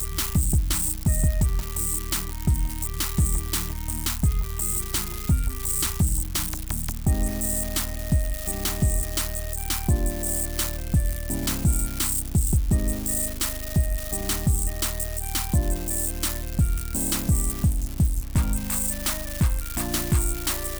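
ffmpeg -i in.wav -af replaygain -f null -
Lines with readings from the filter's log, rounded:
track_gain = +9.5 dB
track_peak = 0.191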